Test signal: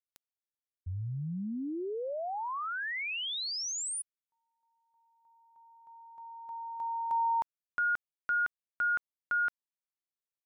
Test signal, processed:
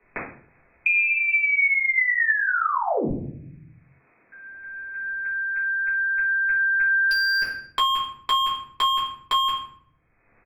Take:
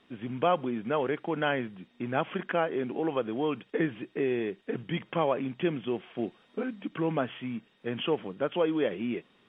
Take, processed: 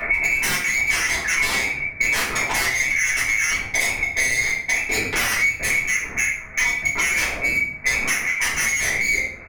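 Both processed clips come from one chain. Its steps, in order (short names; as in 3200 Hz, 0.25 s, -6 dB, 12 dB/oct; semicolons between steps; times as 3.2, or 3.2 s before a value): inverted band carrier 2500 Hz; wavefolder -30 dBFS; echo 75 ms -17 dB; shoebox room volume 49 m³, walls mixed, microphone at 1.9 m; three-band squash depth 100%; gain +4 dB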